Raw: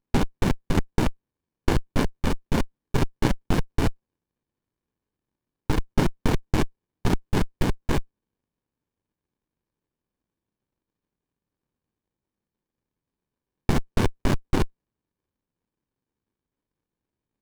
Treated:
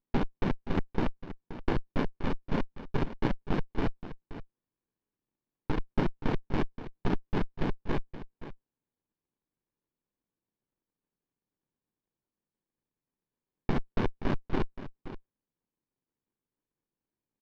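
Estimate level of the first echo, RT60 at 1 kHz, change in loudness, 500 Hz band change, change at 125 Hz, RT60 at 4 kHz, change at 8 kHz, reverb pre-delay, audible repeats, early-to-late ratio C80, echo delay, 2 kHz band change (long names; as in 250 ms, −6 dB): −13.0 dB, no reverb audible, −7.0 dB, −5.5 dB, −8.5 dB, no reverb audible, below −20 dB, no reverb audible, 1, no reverb audible, 525 ms, −7.0 dB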